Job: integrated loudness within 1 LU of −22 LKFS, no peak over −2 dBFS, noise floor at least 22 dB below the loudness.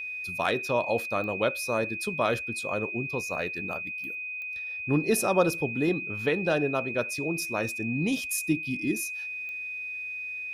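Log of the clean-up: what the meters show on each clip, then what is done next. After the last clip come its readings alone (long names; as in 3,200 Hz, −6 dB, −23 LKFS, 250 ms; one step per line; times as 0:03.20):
number of clicks 5; interfering tone 2,500 Hz; level of the tone −33 dBFS; integrated loudness −28.5 LKFS; sample peak −9.5 dBFS; target loudness −22.0 LKFS
→ click removal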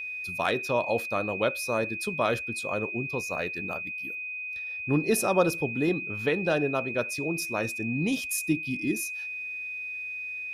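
number of clicks 0; interfering tone 2,500 Hz; level of the tone −33 dBFS
→ notch filter 2,500 Hz, Q 30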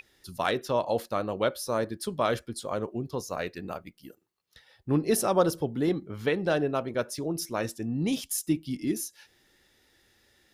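interfering tone none found; integrated loudness −29.5 LKFS; sample peak −10.5 dBFS; target loudness −22.0 LKFS
→ level +7.5 dB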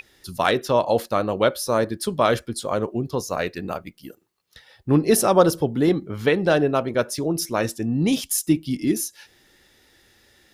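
integrated loudness −22.0 LKFS; sample peak −3.0 dBFS; background noise floor −59 dBFS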